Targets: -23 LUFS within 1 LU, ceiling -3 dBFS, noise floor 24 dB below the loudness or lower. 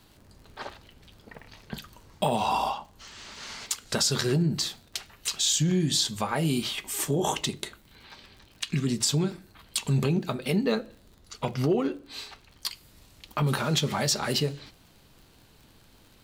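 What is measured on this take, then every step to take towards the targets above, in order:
ticks 53/s; loudness -27.5 LUFS; peak -10.5 dBFS; loudness target -23.0 LUFS
-> de-click; gain +4.5 dB

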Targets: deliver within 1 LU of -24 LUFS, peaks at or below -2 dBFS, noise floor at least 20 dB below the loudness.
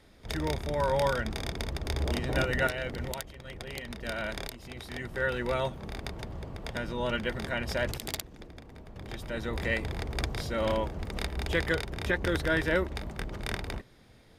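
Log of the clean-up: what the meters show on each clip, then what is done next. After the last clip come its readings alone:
dropouts 1; longest dropout 1.4 ms; loudness -32.5 LUFS; peak -13.0 dBFS; loudness target -24.0 LUFS
-> interpolate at 0.48, 1.4 ms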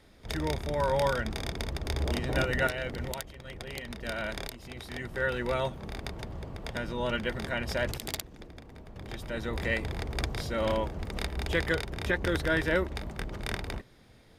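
dropouts 0; loudness -32.5 LUFS; peak -13.0 dBFS; loudness target -24.0 LUFS
-> gain +8.5 dB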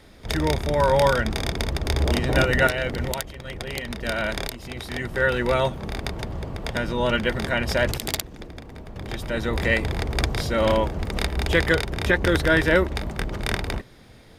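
loudness -24.0 LUFS; peak -4.5 dBFS; noise floor -48 dBFS

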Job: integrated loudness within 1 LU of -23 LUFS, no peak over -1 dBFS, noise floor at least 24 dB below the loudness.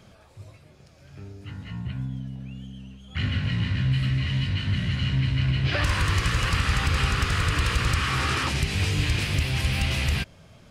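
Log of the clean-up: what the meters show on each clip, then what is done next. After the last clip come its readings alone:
loudness -25.0 LUFS; peak -12.0 dBFS; loudness target -23.0 LUFS
-> gain +2 dB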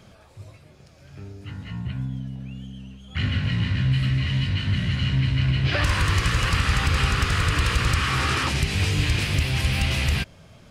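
loudness -23.0 LUFS; peak -10.0 dBFS; noise floor -51 dBFS

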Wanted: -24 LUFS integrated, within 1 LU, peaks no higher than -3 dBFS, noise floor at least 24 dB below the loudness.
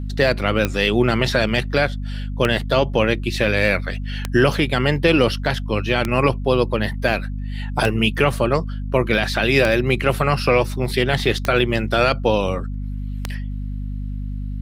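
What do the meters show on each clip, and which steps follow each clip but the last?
clicks 8; hum 50 Hz; harmonics up to 250 Hz; hum level -24 dBFS; loudness -20.0 LUFS; peak -4.0 dBFS; loudness target -24.0 LUFS
-> de-click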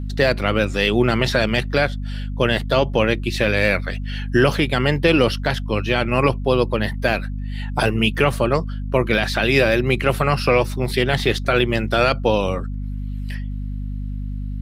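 clicks 0; hum 50 Hz; harmonics up to 250 Hz; hum level -24 dBFS
-> de-hum 50 Hz, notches 5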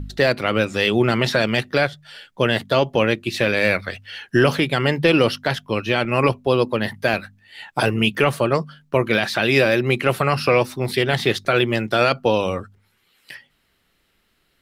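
hum none; loudness -19.5 LUFS; peak -4.0 dBFS; loudness target -24.0 LUFS
-> gain -4.5 dB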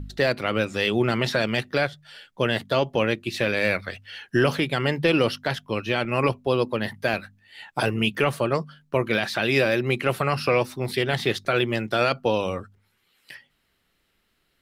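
loudness -24.0 LUFS; peak -8.5 dBFS; noise floor -70 dBFS

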